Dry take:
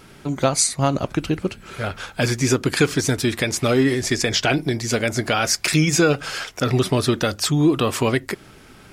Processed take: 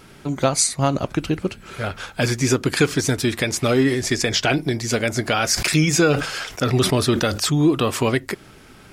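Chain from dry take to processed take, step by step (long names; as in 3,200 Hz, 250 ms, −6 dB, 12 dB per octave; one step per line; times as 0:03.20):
0:05.50–0:07.65: level that may fall only so fast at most 86 dB per second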